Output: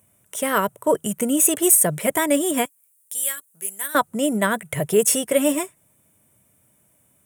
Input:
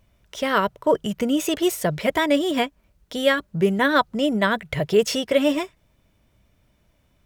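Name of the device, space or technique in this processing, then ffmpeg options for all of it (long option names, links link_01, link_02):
budget condenser microphone: -filter_complex "[0:a]asettb=1/sr,asplit=3[link_01][link_02][link_03];[link_01]atrim=end=2.654[link_04];[link_02]atrim=start=2.65:end=3.95,asetpts=PTS-STARTPTS,afade=type=in:duration=0.004:curve=qsin,afade=type=out:start_time=1.296:duration=0.004:curve=qsin,aderivative[link_05];[link_03]atrim=start=3.946[link_06];[link_04][link_05]acrossfade=duration=0.004:curve1=hsin:curve2=qsin[link_07];[link_07][link_06]acrossfade=duration=0.004:curve1=qsin:curve2=hsin,highpass=frequency=99:width=0.5412,highpass=frequency=99:width=1.3066,highshelf=frequency=6600:width_type=q:width=3:gain=13.5"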